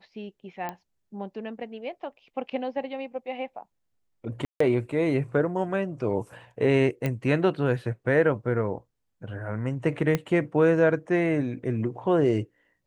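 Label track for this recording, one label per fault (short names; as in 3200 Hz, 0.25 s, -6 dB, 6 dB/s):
0.690000	0.690000	pop -19 dBFS
4.450000	4.600000	gap 0.154 s
7.060000	7.060000	pop -15 dBFS
10.150000	10.150000	pop -11 dBFS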